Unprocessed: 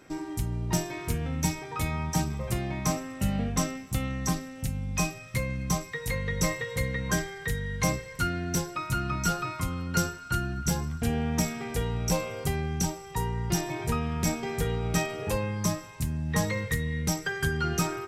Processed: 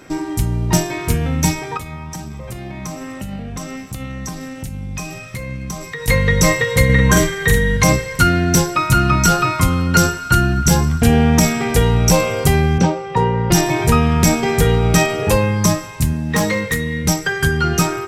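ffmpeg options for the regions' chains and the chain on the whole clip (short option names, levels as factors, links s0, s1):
-filter_complex "[0:a]asettb=1/sr,asplit=3[s0][s1][s2];[s0]atrim=end=1.774[s3];[s1]atrim=start=1.77:end=6.08,asetpts=PTS-STARTPTS,afade=t=in:d=0.004:c=qsin,afade=t=out:st=4.306:d=0.004:c=qsin,acompressor=threshold=0.02:ratio=8:attack=3.2:release=140:knee=1:detection=peak,flanger=delay=4.3:depth=3.3:regen=86:speed=2:shape=triangular[s4];[s2]atrim=start=6.076[s5];[s3][s4]acrossfade=d=0.004:c1=hsin:c2=qsin[s6];[s6][s5]acrossfade=d=0.004:c1=qsin:c2=hsin,asettb=1/sr,asplit=3[s7][s8][s9];[s7]atrim=end=6.854[s10];[s8]atrim=start=6.85:end=7.77,asetpts=PTS-STARTPTS,afade=t=in:d=0.004:c=qsin,afade=t=out:st=0.916:d=0.004:c=qsin,bandreject=f=5000:w=6.9,asplit=2[s11][s12];[s12]adelay=45,volume=0.75[s13];[s11][s13]amix=inputs=2:normalize=0,atrim=end_sample=40572[s14];[s9]atrim=start=7.766[s15];[s10][s14]acrossfade=d=0.004:c1=hsin:c2=qsin[s16];[s16][s15]acrossfade=d=0.004:c1=qsin:c2=hsin,asettb=1/sr,asplit=3[s17][s18][s19];[s17]atrim=end=12.784[s20];[s18]atrim=start=12.78:end=13.51,asetpts=PTS-STARTPTS,afade=t=in:d=0.004:c=qsin,afade=t=out:st=0.726:d=0.004:c=qsin,highpass=120,lowpass=2700,equalizer=f=520:w=7.6:g=13.5,bandreject=f=1900:w=26[s21];[s19]atrim=start=13.506[s22];[s20][s21]acrossfade=d=0.004:c1=hsin:c2=qsin[s23];[s23][s22]acrossfade=d=0.004:c1=qsin:c2=hsin,asettb=1/sr,asplit=3[s24][s25][s26];[s24]atrim=end=16.134[s27];[s25]atrim=start=16.13:end=17.05,asetpts=PTS-STARTPTS,afade=t=in:d=0.004:c=qsin,afade=t=out:st=0.916:d=0.004:c=qsin,lowshelf=f=160:t=q:w=1.5:g=-6.5,volume=16.8,asoftclip=hard,volume=0.0596[s28];[s26]atrim=start=17.046[s29];[s27][s28]acrossfade=d=0.004:c1=hsin:c2=qsin[s30];[s30][s29]acrossfade=d=0.004:c1=qsin:c2=hsin,bandreject=f=403.4:t=h:w=4,bandreject=f=806.8:t=h:w=4,bandreject=f=1210.2:t=h:w=4,bandreject=f=1613.6:t=h:w=4,bandreject=f=2017:t=h:w=4,bandreject=f=2420.4:t=h:w=4,bandreject=f=2823.8:t=h:w=4,bandreject=f=3227.2:t=h:w=4,bandreject=f=3630.6:t=h:w=4,bandreject=f=4034:t=h:w=4,bandreject=f=4437.4:t=h:w=4,bandreject=f=4840.8:t=h:w=4,bandreject=f=5244.2:t=h:w=4,bandreject=f=5647.6:t=h:w=4,bandreject=f=6051:t=h:w=4,bandreject=f=6454.4:t=h:w=4,bandreject=f=6857.8:t=h:w=4,bandreject=f=7261.2:t=h:w=4,bandreject=f=7664.6:t=h:w=4,bandreject=f=8068:t=h:w=4,bandreject=f=8471.4:t=h:w=4,bandreject=f=8874.8:t=h:w=4,bandreject=f=9278.2:t=h:w=4,bandreject=f=9681.6:t=h:w=4,bandreject=f=10085:t=h:w=4,bandreject=f=10488.4:t=h:w=4,bandreject=f=10891.8:t=h:w=4,bandreject=f=11295.2:t=h:w=4,bandreject=f=11698.6:t=h:w=4,bandreject=f=12102:t=h:w=4,bandreject=f=12505.4:t=h:w=4,bandreject=f=12908.8:t=h:w=4,bandreject=f=13312.2:t=h:w=4,bandreject=f=13715.6:t=h:w=4,dynaudnorm=f=590:g=11:m=1.58,alimiter=level_in=4.47:limit=0.891:release=50:level=0:latency=1,volume=0.891"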